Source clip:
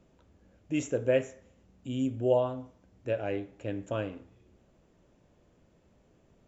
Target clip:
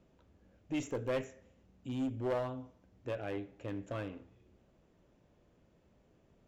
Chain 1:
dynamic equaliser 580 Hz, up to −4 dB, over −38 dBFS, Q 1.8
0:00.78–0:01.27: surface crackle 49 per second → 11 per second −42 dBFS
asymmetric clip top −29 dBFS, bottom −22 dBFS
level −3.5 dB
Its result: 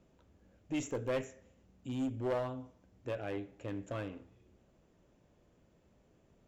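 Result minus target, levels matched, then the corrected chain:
8,000 Hz band +3.5 dB
dynamic equaliser 580 Hz, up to −4 dB, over −38 dBFS, Q 1.8
low-pass filter 6,300 Hz 12 dB per octave
0:00.78–0:01.27: surface crackle 49 per second → 11 per second −42 dBFS
asymmetric clip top −29 dBFS, bottom −22 dBFS
level −3.5 dB

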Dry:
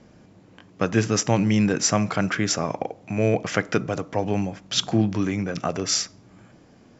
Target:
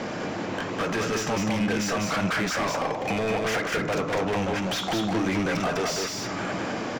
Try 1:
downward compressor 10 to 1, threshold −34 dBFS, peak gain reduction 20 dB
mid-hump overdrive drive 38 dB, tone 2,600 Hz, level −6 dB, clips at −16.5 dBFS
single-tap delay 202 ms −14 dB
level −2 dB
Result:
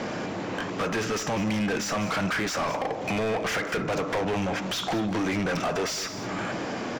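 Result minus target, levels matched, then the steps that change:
echo-to-direct −10.5 dB
change: single-tap delay 202 ms −3.5 dB

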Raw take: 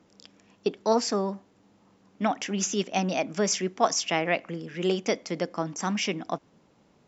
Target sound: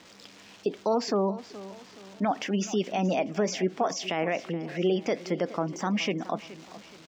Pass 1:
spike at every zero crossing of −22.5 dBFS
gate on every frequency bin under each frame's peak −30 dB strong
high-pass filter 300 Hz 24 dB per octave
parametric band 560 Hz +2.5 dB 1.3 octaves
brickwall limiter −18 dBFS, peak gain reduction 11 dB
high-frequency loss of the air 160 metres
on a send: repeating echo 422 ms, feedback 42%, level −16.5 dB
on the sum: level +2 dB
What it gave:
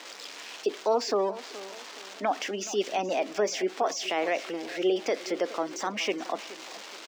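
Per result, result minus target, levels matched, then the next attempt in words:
spike at every zero crossing: distortion +10 dB; 250 Hz band −5.0 dB
spike at every zero crossing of −32.5 dBFS
gate on every frequency bin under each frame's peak −30 dB strong
high-pass filter 300 Hz 24 dB per octave
parametric band 560 Hz +2.5 dB 1.3 octaves
brickwall limiter −18 dBFS, peak gain reduction 11 dB
high-frequency loss of the air 160 metres
on a send: repeating echo 422 ms, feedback 42%, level −16.5 dB
on the sum: level +2 dB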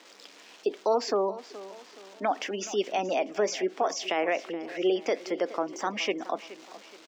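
250 Hz band −5.0 dB
spike at every zero crossing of −32.5 dBFS
gate on every frequency bin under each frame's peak −30 dB strong
parametric band 560 Hz +2.5 dB 1.3 octaves
brickwall limiter −18 dBFS, peak gain reduction 11 dB
high-frequency loss of the air 160 metres
on a send: repeating echo 422 ms, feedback 42%, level −16.5 dB
on the sum: level +2 dB

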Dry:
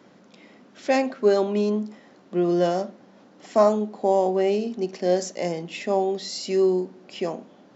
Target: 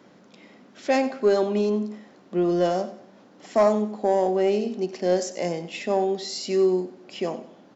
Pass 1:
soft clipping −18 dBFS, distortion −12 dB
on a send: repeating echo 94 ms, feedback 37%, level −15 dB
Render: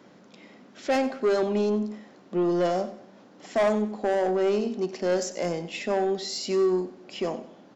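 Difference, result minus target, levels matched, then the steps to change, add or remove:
soft clipping: distortion +11 dB
change: soft clipping −9 dBFS, distortion −23 dB

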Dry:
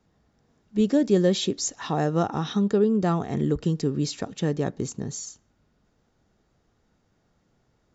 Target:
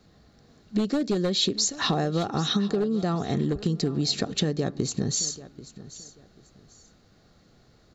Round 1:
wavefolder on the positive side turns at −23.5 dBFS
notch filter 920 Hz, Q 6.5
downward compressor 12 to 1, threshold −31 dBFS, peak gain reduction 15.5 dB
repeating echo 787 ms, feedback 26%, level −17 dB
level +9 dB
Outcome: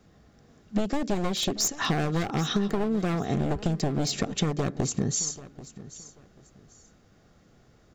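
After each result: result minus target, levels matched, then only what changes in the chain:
wavefolder on the positive side: distortion +15 dB; 4,000 Hz band −3.0 dB
change: wavefolder on the positive side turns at −15.5 dBFS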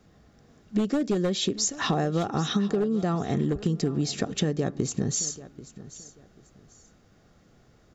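4,000 Hz band −4.5 dB
add after downward compressor: parametric band 4,200 Hz +12.5 dB 0.25 octaves

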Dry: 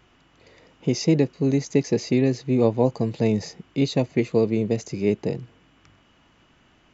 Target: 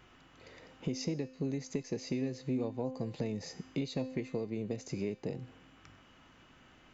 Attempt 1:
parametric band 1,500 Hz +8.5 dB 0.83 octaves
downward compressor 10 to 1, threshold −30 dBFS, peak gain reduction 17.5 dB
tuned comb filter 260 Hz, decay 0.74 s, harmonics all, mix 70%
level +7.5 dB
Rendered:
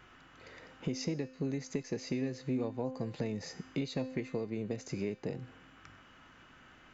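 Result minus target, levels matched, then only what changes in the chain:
2,000 Hz band +3.0 dB
change: parametric band 1,500 Hz +2 dB 0.83 octaves

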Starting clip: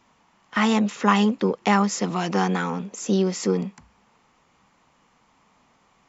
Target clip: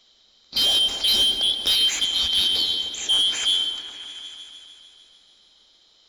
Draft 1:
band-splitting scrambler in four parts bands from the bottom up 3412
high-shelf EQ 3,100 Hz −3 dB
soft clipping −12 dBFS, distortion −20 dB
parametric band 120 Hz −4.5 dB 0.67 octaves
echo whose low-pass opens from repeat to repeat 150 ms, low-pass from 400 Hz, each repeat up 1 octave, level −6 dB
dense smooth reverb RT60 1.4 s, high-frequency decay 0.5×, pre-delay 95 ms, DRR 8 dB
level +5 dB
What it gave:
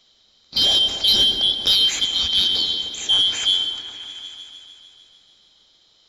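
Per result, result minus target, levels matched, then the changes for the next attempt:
soft clipping: distortion −9 dB; 125 Hz band +4.0 dB
change: soft clipping −20 dBFS, distortion −11 dB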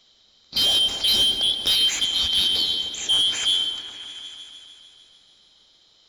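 125 Hz band +3.5 dB
change: parametric band 120 Hz −14.5 dB 0.67 octaves

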